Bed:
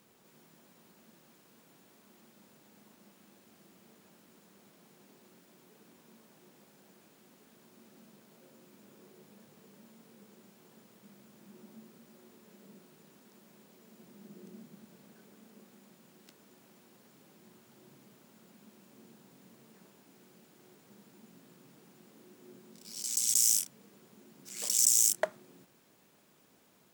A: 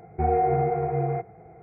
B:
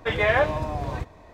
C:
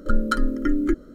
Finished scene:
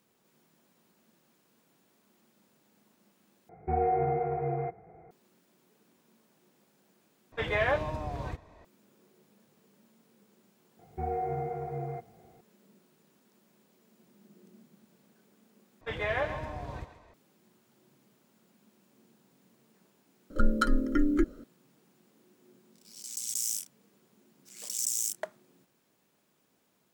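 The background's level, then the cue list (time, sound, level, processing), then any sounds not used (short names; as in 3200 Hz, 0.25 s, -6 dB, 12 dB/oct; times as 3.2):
bed -6.5 dB
3.49 replace with A -5 dB + bell 110 Hz -5 dB
7.32 replace with B -7 dB
10.79 add A -10.5 dB
15.81 replace with B -10.5 dB + thinning echo 0.135 s, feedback 45%, level -10 dB
20.3 add C -4 dB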